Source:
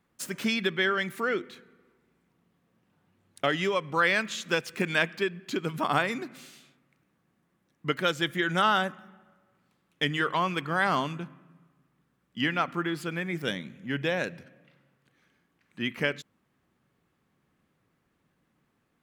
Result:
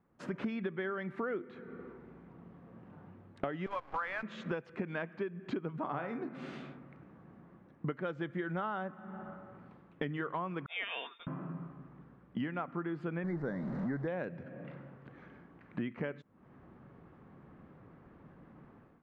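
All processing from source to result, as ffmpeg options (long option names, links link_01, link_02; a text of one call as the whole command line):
ffmpeg -i in.wav -filter_complex "[0:a]asettb=1/sr,asplit=3[link_01][link_02][link_03];[link_01]atrim=end=3.664[link_04];[link_02]atrim=start=3.66:end=4.23,asetpts=PTS-STARTPTS,afade=type=in:duration=0.004:curve=qsin,afade=type=out:start_time=0.566:duration=0.004:curve=qsin,aeval=exprs='val(0)+0.5*0.0141*sgn(val(0))':channel_layout=same,highpass=frequency=700:width=0.5412,highpass=frequency=700:width=1.3066,acrusher=bits=6:dc=4:mix=0:aa=0.000001[link_05];[link_03]atrim=start=4.226[link_06];[link_04][link_05]acrossfade=duration=0.004:curve1=hsin:curve2=qsin[link_07];[link_07][link_06]acrossfade=duration=0.004:curve1=qsin:curve2=hsin,asettb=1/sr,asplit=3[link_08][link_09][link_10];[link_08]atrim=end=5.814[link_11];[link_09]atrim=start=5.81:end=6.29,asetpts=PTS-STARTPTS,afade=type=in:duration=0.004:curve=qsin,afade=type=out:start_time=0.476:duration=0.004:curve=qsin,asplit=2[link_12][link_13];[link_13]adelay=30,volume=-12dB[link_14];[link_12][link_14]amix=inputs=2:normalize=0,atrim=end_sample=21168,bandreject=frequency=52.07:width_type=h:width=4,bandreject=frequency=104.14:width_type=h:width=4,bandreject=frequency=156.21:width_type=h:width=4,bandreject=frequency=208.28:width_type=h:width=4,bandreject=frequency=260.35:width_type=h:width=4,bandreject=frequency=312.42:width_type=h:width=4,bandreject=frequency=364.49:width_type=h:width=4,bandreject=frequency=416.56:width_type=h:width=4,bandreject=frequency=468.63:width_type=h:width=4,bandreject=frequency=520.7:width_type=h:width=4,bandreject=frequency=572.77:width_type=h:width=4,bandreject=frequency=624.84:width_type=h:width=4,bandreject=frequency=676.91:width_type=h:width=4,bandreject=frequency=728.98:width_type=h:width=4,bandreject=frequency=781.05:width_type=h:width=4,bandreject=frequency=833.12:width_type=h:width=4,bandreject=frequency=885.19:width_type=h:width=4,bandreject=frequency=937.26:width_type=h:width=4,bandreject=frequency=989.33:width_type=h:width=4,bandreject=frequency=1041.4:width_type=h:width=4,bandreject=frequency=1093.47:width_type=h:width=4,bandreject=frequency=1145.54:width_type=h:width=4,bandreject=frequency=1197.61:width_type=h:width=4,bandreject=frequency=1249.68:width_type=h:width=4,bandreject=frequency=1301.75:width_type=h:width=4,bandreject=frequency=1353.82:width_type=h:width=4,bandreject=frequency=1405.89:width_type=h:width=4,bandreject=frequency=1457.96:width_type=h:width=4,bandreject=frequency=1510.03:width_type=h:width=4,bandreject=frequency=1562.1:width_type=h:width=4,bandreject=frequency=1614.17:width_type=h:width=4,bandreject=frequency=1666.24:width_type=h:width=4,bandreject=frequency=1718.31:width_type=h:width=4,bandreject=frequency=1770.38:width_type=h:width=4,bandreject=frequency=1822.45:width_type=h:width=4[link_15];[link_10]atrim=start=6.286[link_16];[link_11][link_15]acrossfade=duration=0.004:curve1=hsin:curve2=qsin[link_17];[link_17][link_16]acrossfade=duration=0.004:curve1=qsin:curve2=hsin,asettb=1/sr,asplit=3[link_18][link_19][link_20];[link_18]atrim=end=10.664[link_21];[link_19]atrim=start=10.66:end=11.27,asetpts=PTS-STARTPTS,afade=type=in:duration=0.004:curve=qsin,afade=type=out:start_time=0.606:duration=0.004:curve=qsin,agate=range=-33dB:threshold=-27dB:ratio=3:release=100:detection=peak,lowpass=frequency=3200:width_type=q:width=0.5098,lowpass=frequency=3200:width_type=q:width=0.6013,lowpass=frequency=3200:width_type=q:width=0.9,lowpass=frequency=3200:width_type=q:width=2.563,afreqshift=-3800,aecho=1:1:4.3:0.37,atrim=end_sample=26901[link_22];[link_20]atrim=start=11.266[link_23];[link_21][link_22]acrossfade=duration=0.004:curve1=hsin:curve2=qsin[link_24];[link_24][link_23]acrossfade=duration=0.004:curve1=qsin:curve2=hsin,asettb=1/sr,asplit=3[link_25][link_26][link_27];[link_25]atrim=end=13.244[link_28];[link_26]atrim=start=13.24:end=14.08,asetpts=PTS-STARTPTS,afade=type=in:duration=0.004:curve=qsin,afade=type=out:start_time=0.836:duration=0.004:curve=qsin,aeval=exprs='val(0)+0.5*0.0168*sgn(val(0))':channel_layout=same,asuperstop=centerf=2800:order=8:qfactor=1.6,acrusher=bits=9:dc=4:mix=0:aa=0.000001[link_29];[link_27]atrim=start=14.076[link_30];[link_28][link_29]acrossfade=duration=0.004:curve1=hsin:curve2=qsin[link_31];[link_31][link_30]acrossfade=duration=0.004:curve1=qsin:curve2=hsin,dynaudnorm=framelen=130:gausssize=5:maxgain=16dB,lowpass=1200,acompressor=threshold=-37dB:ratio=6,volume=1dB" out.wav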